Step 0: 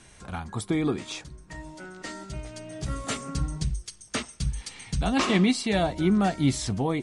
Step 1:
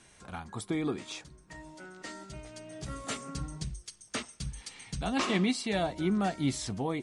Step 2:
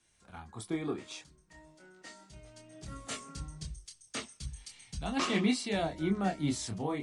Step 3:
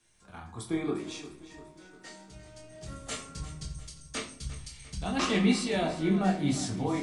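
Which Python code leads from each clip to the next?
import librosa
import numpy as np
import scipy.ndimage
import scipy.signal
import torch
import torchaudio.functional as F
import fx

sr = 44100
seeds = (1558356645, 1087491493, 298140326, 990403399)

y1 = fx.low_shelf(x, sr, hz=110.0, db=-8.0)
y1 = F.gain(torch.from_numpy(y1), -5.0).numpy()
y2 = fx.chorus_voices(y1, sr, voices=2, hz=0.36, base_ms=26, depth_ms=1.5, mix_pct=35)
y2 = fx.band_widen(y2, sr, depth_pct=40)
y3 = fx.echo_feedback(y2, sr, ms=350, feedback_pct=53, wet_db=-15.0)
y3 = fx.room_shoebox(y3, sr, seeds[0], volume_m3=61.0, walls='mixed', distance_m=0.47)
y3 = F.gain(torch.from_numpy(y3), 1.5).numpy()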